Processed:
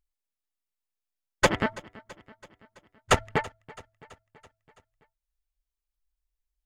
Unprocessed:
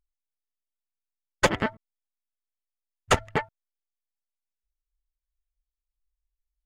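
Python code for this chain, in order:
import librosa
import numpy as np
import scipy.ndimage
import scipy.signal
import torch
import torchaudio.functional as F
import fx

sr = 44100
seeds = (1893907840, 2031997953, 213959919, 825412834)

y = fx.echo_feedback(x, sr, ms=331, feedback_pct=59, wet_db=-21.0)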